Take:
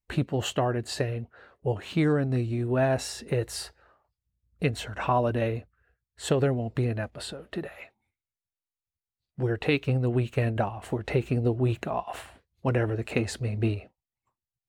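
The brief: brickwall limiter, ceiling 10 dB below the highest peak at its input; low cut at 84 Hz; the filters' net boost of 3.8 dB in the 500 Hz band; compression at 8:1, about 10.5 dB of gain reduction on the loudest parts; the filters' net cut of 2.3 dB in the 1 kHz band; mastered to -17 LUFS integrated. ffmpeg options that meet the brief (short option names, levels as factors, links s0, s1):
-af "highpass=84,equalizer=f=500:t=o:g=6.5,equalizer=f=1000:t=o:g=-7,acompressor=threshold=0.0398:ratio=8,volume=8.91,alimiter=limit=0.531:level=0:latency=1"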